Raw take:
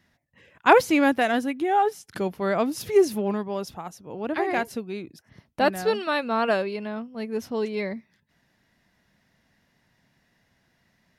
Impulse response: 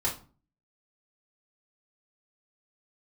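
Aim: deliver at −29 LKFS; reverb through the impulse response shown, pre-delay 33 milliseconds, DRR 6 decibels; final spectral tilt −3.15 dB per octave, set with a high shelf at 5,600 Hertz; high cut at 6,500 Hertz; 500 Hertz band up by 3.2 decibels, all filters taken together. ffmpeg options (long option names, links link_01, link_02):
-filter_complex "[0:a]lowpass=6500,equalizer=frequency=500:width_type=o:gain=4,highshelf=frequency=5600:gain=7.5,asplit=2[link_01][link_02];[1:a]atrim=start_sample=2205,adelay=33[link_03];[link_02][link_03]afir=irnorm=-1:irlink=0,volume=-13.5dB[link_04];[link_01][link_04]amix=inputs=2:normalize=0,volume=-8dB"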